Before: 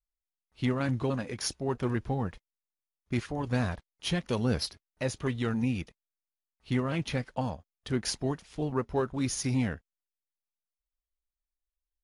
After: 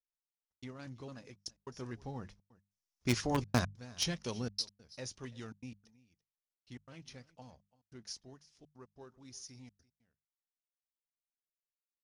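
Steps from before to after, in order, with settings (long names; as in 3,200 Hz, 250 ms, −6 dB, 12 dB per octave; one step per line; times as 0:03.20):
source passing by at 0:03.37, 6 m/s, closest 1.7 metres
parametric band 5,600 Hz +15 dB 0.75 octaves
on a send: single-tap delay 337 ms −21.5 dB
on the sum: gate pattern "xxx.x.xxxx" 144 BPM −60 dB
mains-hum notches 50/100/150/200 Hz
in parallel at −8 dB: bit reduction 4 bits
on the sum: level +1 dB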